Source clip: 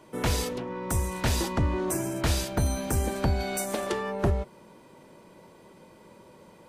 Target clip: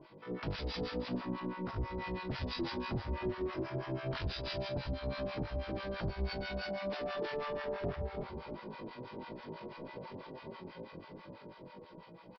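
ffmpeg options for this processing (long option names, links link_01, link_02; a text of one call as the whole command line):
ffmpeg -i in.wav -filter_complex "[0:a]dynaudnorm=framelen=250:gausssize=9:maxgain=8dB,alimiter=limit=-15.5dB:level=0:latency=1:release=79,areverse,acompressor=threshold=-32dB:ratio=4,areverse,flanger=delay=5.9:depth=2.7:regen=-39:speed=0.3:shape=triangular,aresample=11025,asoftclip=type=hard:threshold=-37.5dB,aresample=44100,asplit=2[link_01][link_02];[link_02]adelay=44,volume=-7dB[link_03];[link_01][link_03]amix=inputs=2:normalize=0,atempo=0.54,aecho=1:1:313:0.316,acrossover=split=760[link_04][link_05];[link_04]aeval=exprs='val(0)*(1-1/2+1/2*cos(2*PI*6.1*n/s))':channel_layout=same[link_06];[link_05]aeval=exprs='val(0)*(1-1/2-1/2*cos(2*PI*6.1*n/s))':channel_layout=same[link_07];[link_06][link_07]amix=inputs=2:normalize=0,volume=6.5dB" out.wav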